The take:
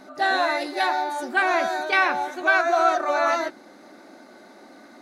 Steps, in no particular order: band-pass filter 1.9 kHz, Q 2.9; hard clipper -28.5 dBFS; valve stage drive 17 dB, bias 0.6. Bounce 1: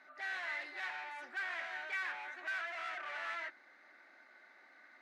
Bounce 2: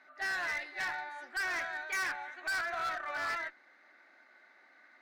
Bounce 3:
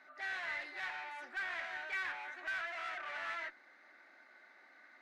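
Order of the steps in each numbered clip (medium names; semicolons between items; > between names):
hard clipper > valve stage > band-pass filter; band-pass filter > hard clipper > valve stage; hard clipper > band-pass filter > valve stage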